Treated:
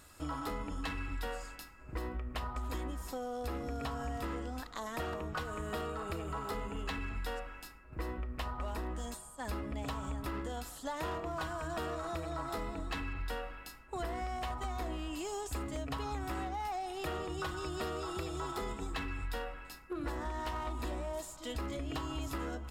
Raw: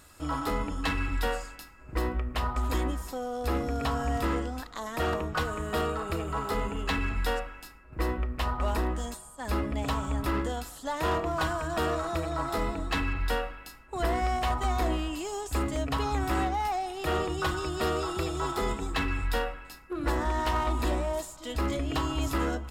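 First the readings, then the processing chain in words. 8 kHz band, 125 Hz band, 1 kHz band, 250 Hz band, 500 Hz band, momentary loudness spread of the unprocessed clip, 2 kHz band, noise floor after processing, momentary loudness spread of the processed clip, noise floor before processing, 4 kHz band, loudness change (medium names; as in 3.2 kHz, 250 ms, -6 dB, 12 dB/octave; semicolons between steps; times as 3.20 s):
-7.0 dB, -9.0 dB, -9.0 dB, -8.5 dB, -8.5 dB, 7 LU, -9.0 dB, -53 dBFS, 4 LU, -50 dBFS, -8.5 dB, -9.0 dB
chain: compression, threshold -32 dBFS, peak gain reduction 9 dB; trim -3 dB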